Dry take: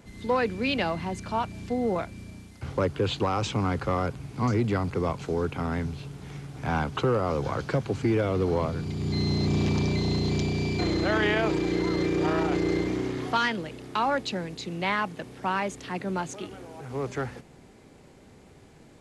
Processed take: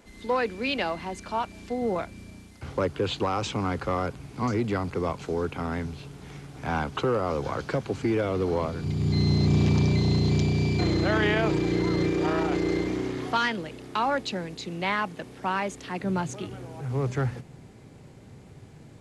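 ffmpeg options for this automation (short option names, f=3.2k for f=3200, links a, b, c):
-af "asetnsamples=n=441:p=0,asendcmd='1.82 equalizer g -4.5;8.84 equalizer g 6.5;12.11 equalizer g -1.5;16.03 equalizer g 10.5',equalizer=f=120:t=o:w=1.1:g=-14"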